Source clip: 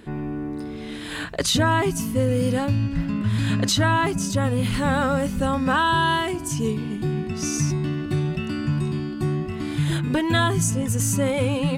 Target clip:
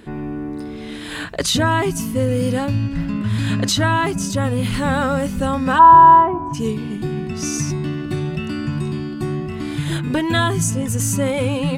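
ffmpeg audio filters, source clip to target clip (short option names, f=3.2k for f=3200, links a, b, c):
-filter_complex "[0:a]asplit=3[a][b][c];[a]afade=t=out:st=5.78:d=0.02[d];[b]lowpass=f=970:t=q:w=4.9,afade=t=in:st=5.78:d=0.02,afade=t=out:st=6.53:d=0.02[e];[c]afade=t=in:st=6.53:d=0.02[f];[d][e][f]amix=inputs=3:normalize=0,bandreject=f=50:t=h:w=6,bandreject=f=100:t=h:w=6,bandreject=f=150:t=h:w=6,volume=2.5dB"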